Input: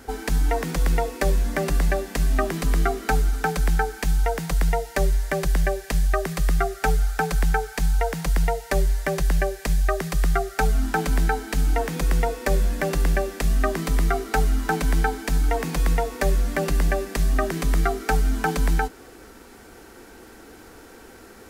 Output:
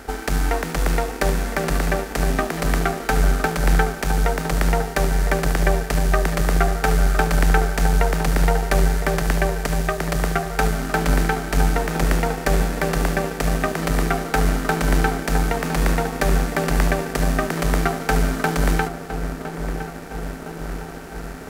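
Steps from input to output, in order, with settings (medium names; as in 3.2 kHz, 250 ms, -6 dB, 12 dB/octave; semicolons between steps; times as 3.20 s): spectral levelling over time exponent 0.6; filtered feedback delay 1010 ms, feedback 75%, low-pass 1.1 kHz, level -6.5 dB; power-law waveshaper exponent 1.4; trim +3.5 dB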